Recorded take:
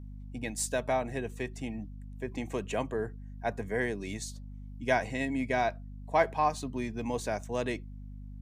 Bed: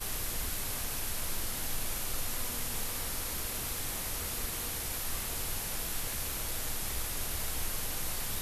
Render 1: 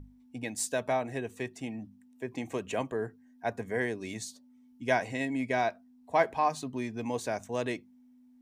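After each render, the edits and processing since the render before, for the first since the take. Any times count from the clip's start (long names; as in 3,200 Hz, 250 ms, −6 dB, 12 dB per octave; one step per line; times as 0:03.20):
mains-hum notches 50/100/150/200 Hz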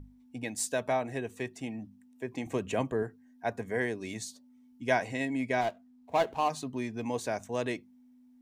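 0:02.46–0:03.03: low-shelf EQ 270 Hz +7 dB
0:05.61–0:06.50: running median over 25 samples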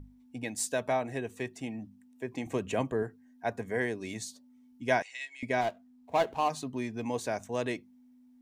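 0:05.02–0:05.43: flat-topped band-pass 4,100 Hz, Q 0.75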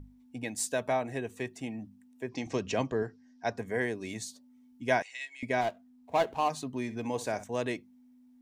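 0:02.29–0:03.58: low-pass with resonance 5,300 Hz, resonance Q 4.7
0:06.82–0:07.44: flutter between parallel walls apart 10.8 metres, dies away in 0.25 s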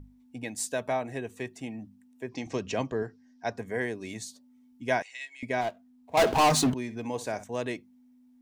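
0:06.17–0:06.74: leveller curve on the samples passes 5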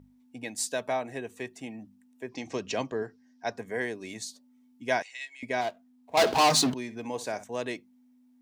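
high-pass filter 210 Hz 6 dB per octave
dynamic equaliser 4,500 Hz, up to +6 dB, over −47 dBFS, Q 1.5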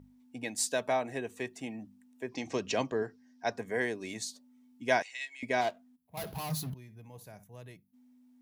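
0:05.96–0:07.94: gain on a spectral selection 210–9,900 Hz −19 dB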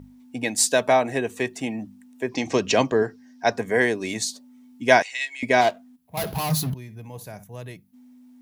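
level +11.5 dB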